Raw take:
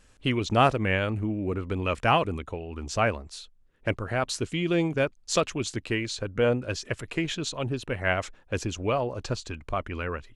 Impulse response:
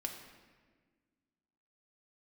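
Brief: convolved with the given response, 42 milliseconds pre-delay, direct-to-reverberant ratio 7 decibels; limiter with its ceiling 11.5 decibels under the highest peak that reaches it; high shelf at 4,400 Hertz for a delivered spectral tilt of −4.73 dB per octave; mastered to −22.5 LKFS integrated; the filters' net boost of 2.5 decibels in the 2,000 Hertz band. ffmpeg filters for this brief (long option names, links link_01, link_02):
-filter_complex "[0:a]equalizer=frequency=2000:width_type=o:gain=4.5,highshelf=frequency=4400:gain=-6,alimiter=limit=-18dB:level=0:latency=1,asplit=2[link_01][link_02];[1:a]atrim=start_sample=2205,adelay=42[link_03];[link_02][link_03]afir=irnorm=-1:irlink=0,volume=-6.5dB[link_04];[link_01][link_04]amix=inputs=2:normalize=0,volume=7.5dB"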